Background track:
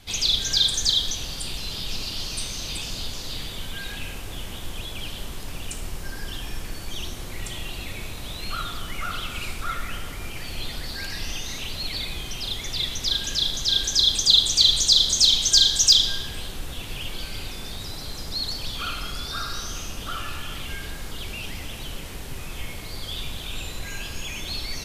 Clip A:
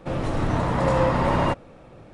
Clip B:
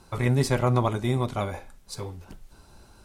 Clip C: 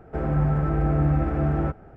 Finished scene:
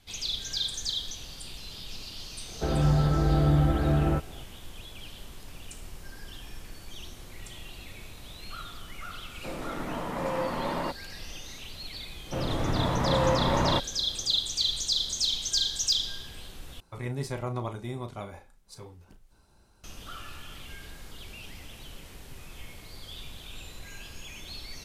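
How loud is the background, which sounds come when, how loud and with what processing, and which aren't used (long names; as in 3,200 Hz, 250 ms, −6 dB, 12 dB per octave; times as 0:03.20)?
background track −10.5 dB
0:02.48: mix in C −1 dB
0:09.38: mix in A −9 dB + high-pass filter 170 Hz 24 dB per octave
0:12.26: mix in A −4 dB
0:16.80: overwrite with B −10.5 dB + double-tracking delay 35 ms −10 dB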